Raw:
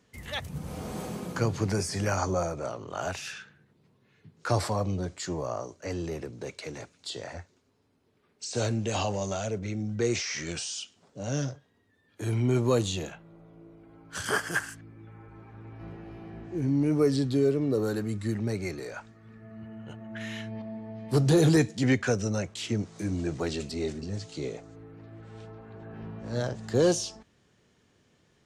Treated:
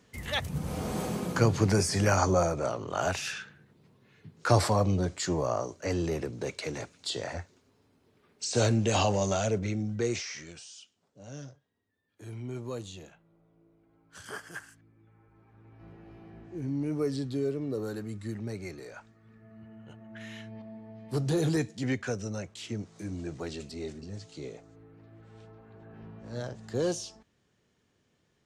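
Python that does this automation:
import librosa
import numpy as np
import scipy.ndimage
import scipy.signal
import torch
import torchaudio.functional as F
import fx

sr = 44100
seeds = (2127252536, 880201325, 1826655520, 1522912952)

y = fx.gain(x, sr, db=fx.line((9.57, 3.5), (10.29, -5.5), (10.54, -13.0), (15.31, -13.0), (16.11, -6.5)))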